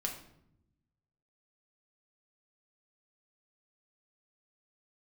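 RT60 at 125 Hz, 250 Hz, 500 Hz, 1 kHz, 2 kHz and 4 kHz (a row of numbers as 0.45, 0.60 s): 1.6, 1.3, 0.85, 0.70, 0.60, 0.50 s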